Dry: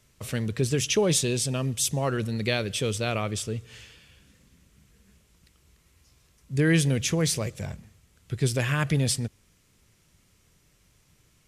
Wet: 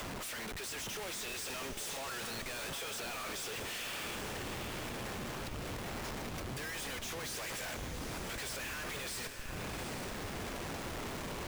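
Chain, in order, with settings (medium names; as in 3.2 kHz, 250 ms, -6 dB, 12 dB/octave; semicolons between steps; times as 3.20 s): high-pass 1.2 kHz 12 dB/octave; reverse; compression 12:1, threshold -35 dBFS, peak gain reduction 15 dB; reverse; peak limiter -31.5 dBFS, peak gain reduction 10 dB; upward compressor, threshold -55 dBFS; Schmitt trigger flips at -57.5 dBFS; on a send: echo that smears into a reverb 790 ms, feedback 44%, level -6.5 dB; on the sum: trim +6 dB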